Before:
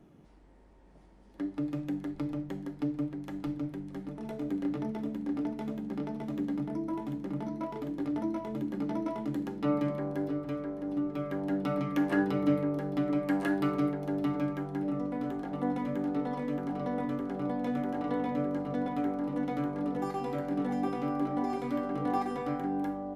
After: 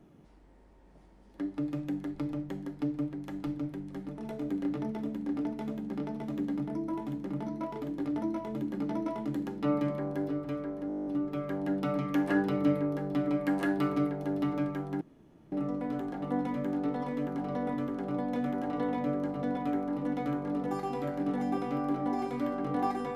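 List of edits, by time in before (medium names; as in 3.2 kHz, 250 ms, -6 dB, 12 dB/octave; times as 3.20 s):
10.88 s: stutter 0.02 s, 10 plays
14.83 s: insert room tone 0.51 s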